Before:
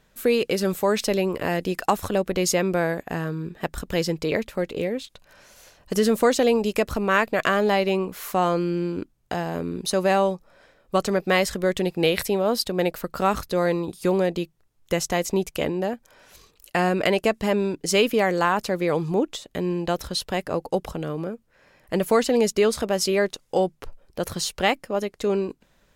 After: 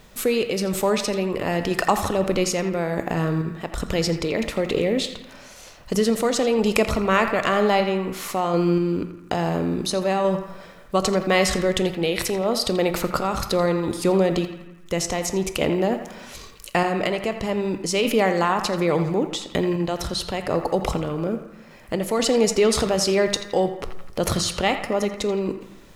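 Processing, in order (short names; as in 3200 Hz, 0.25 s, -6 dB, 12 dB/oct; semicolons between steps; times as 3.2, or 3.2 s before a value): LPF 10000 Hz 12 dB/oct; bell 1600 Hz -7.5 dB 0.2 oct; in parallel at -0.5 dB: negative-ratio compressor -33 dBFS, ratio -1; on the sum: requantised 10-bit, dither none; random-step tremolo 4.1 Hz; narrowing echo 84 ms, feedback 67%, band-pass 1500 Hz, level -8.5 dB; on a send at -12 dB: reverb RT60 0.70 s, pre-delay 18 ms; on the sum: gain +1.5 dB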